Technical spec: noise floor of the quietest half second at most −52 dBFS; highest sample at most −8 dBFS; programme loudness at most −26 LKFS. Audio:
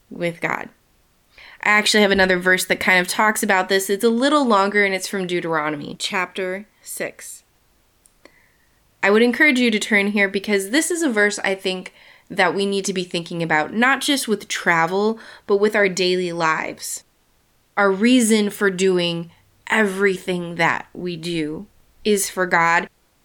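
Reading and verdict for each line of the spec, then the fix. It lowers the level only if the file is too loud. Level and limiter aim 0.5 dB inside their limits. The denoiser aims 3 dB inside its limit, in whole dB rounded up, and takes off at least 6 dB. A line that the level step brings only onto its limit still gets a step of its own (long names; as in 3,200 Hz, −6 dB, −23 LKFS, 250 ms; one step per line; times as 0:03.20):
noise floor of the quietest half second −61 dBFS: in spec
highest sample −4.5 dBFS: out of spec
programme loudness −18.5 LKFS: out of spec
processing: level −8 dB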